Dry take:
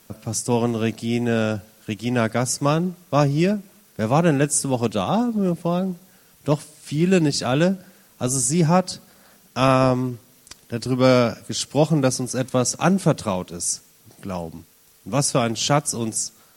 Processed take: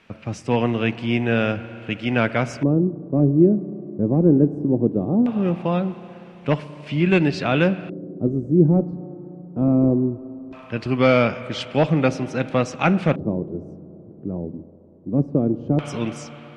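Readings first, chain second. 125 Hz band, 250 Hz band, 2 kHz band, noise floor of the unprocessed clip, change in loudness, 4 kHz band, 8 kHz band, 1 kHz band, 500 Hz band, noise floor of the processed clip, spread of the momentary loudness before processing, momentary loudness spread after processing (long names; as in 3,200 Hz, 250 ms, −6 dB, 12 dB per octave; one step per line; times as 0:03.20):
+1.0 dB, +2.5 dB, +2.5 dB, −54 dBFS, +0.5 dB, −5.5 dB, below −20 dB, −4.0 dB, 0.0 dB, −44 dBFS, 13 LU, 17 LU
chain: spring reverb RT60 3.6 s, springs 34/57 ms, chirp 35 ms, DRR 14 dB
asymmetric clip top −9 dBFS
auto-filter low-pass square 0.19 Hz 350–2,500 Hz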